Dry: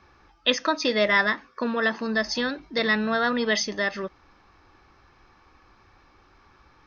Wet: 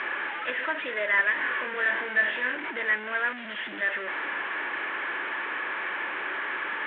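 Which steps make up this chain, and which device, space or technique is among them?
0:03.33–0:03.81: gain on a spectral selection 380–2,700 Hz −25 dB
digital answering machine (band-pass filter 310–3,300 Hz; linear delta modulator 16 kbit/s, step −20.5 dBFS; loudspeaker in its box 470–3,000 Hz, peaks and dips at 490 Hz −4 dB, 760 Hz −10 dB, 1,200 Hz −7 dB, 1,700 Hz +6 dB, 2,700 Hz −4 dB)
high-shelf EQ 4,900 Hz +8.5 dB
0:01.34–0:02.55: flutter between parallel walls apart 4.1 metres, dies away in 0.33 s
level −3.5 dB

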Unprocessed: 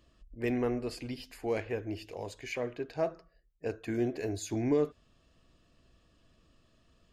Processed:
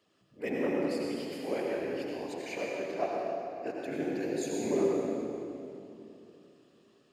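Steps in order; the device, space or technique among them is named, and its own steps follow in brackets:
whispering ghost (random phases in short frames; high-pass filter 250 Hz 12 dB per octave; convolution reverb RT60 2.8 s, pre-delay 73 ms, DRR −2.5 dB)
level −2.5 dB

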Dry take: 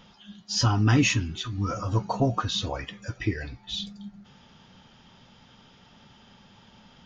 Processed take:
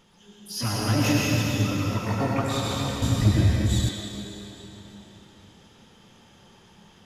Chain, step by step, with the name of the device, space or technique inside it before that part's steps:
shimmer-style reverb (pitch-shifted copies added +12 semitones −6 dB; convolution reverb RT60 3.9 s, pre-delay 87 ms, DRR −5 dB)
0:03.02–0:03.89: bass and treble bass +14 dB, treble +8 dB
level −7 dB

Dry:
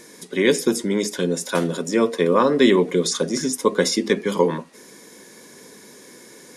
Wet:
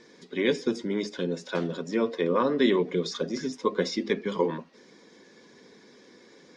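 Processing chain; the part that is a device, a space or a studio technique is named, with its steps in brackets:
clip after many re-uploads (low-pass filter 5,200 Hz 24 dB per octave; spectral magnitudes quantised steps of 15 dB)
level −7 dB

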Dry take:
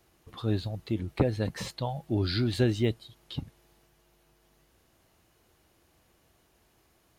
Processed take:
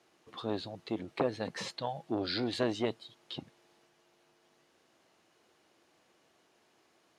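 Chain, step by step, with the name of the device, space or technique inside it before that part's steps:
public-address speaker with an overloaded transformer (saturating transformer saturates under 520 Hz; band-pass filter 250–7,000 Hz)

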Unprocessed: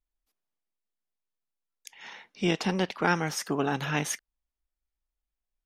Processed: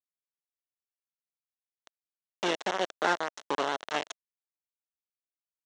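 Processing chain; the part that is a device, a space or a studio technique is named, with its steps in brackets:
hand-held game console (bit reduction 4 bits; loudspeaker in its box 420–5,600 Hz, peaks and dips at 640 Hz +3 dB, 2,400 Hz −8 dB, 4,800 Hz −10 dB)

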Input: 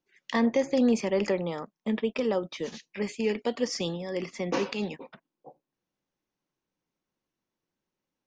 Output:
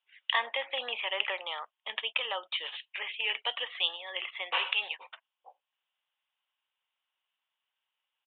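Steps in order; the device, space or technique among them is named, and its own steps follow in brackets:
musical greeting card (downsampling to 8,000 Hz; high-pass filter 810 Hz 24 dB per octave; parametric band 3,000 Hz +12 dB 0.49 octaves)
level +2 dB

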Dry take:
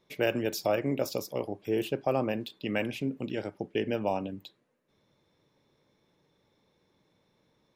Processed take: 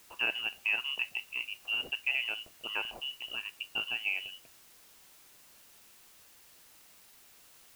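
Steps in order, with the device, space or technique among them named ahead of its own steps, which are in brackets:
scrambled radio voice (band-pass filter 320–2,700 Hz; voice inversion scrambler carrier 3,200 Hz; white noise bed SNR 20 dB)
level −3 dB

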